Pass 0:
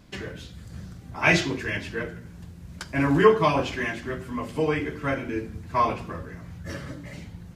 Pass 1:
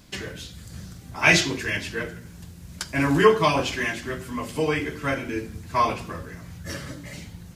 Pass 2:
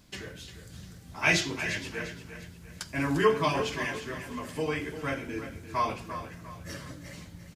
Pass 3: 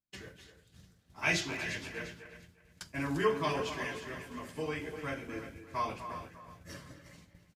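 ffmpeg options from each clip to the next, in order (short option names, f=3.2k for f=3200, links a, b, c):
-af "highshelf=f=3.3k:g=11"
-af "aecho=1:1:349|698|1047|1396:0.282|0.104|0.0386|0.0143,volume=-7dB"
-filter_complex "[0:a]agate=range=-33dB:threshold=-38dB:ratio=3:detection=peak,asplit=2[a][b];[b]adelay=250,highpass=300,lowpass=3.4k,asoftclip=type=hard:threshold=-19dB,volume=-10dB[c];[a][c]amix=inputs=2:normalize=0,volume=-6dB"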